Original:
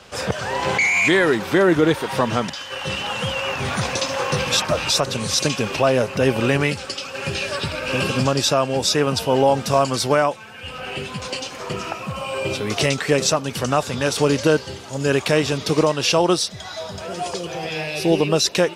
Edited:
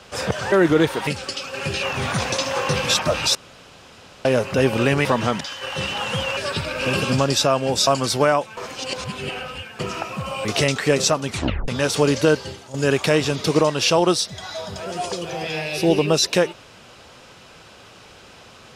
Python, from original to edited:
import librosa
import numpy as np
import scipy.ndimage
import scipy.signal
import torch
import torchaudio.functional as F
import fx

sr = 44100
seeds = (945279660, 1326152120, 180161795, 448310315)

y = fx.edit(x, sr, fx.cut(start_s=0.52, length_s=1.07),
    fx.swap(start_s=2.14, length_s=1.32, other_s=6.68, other_length_s=0.76),
    fx.room_tone_fill(start_s=4.98, length_s=0.9),
    fx.cut(start_s=8.94, length_s=0.83),
    fx.reverse_span(start_s=10.47, length_s=1.22),
    fx.cut(start_s=12.35, length_s=0.32),
    fx.tape_stop(start_s=13.49, length_s=0.41),
    fx.fade_out_to(start_s=14.68, length_s=0.28, floor_db=-11.5), tone=tone)